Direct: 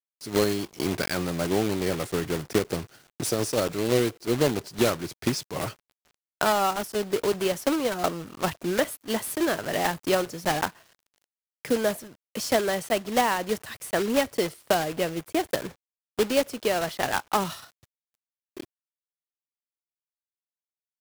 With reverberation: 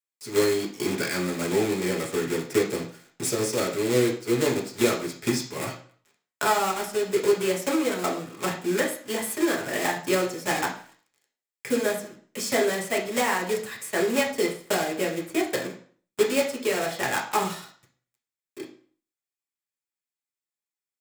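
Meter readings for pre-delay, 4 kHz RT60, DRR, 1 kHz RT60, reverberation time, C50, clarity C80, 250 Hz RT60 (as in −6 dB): 4 ms, 0.40 s, −2.0 dB, 0.50 s, 0.50 s, 8.5 dB, 13.5 dB, 0.45 s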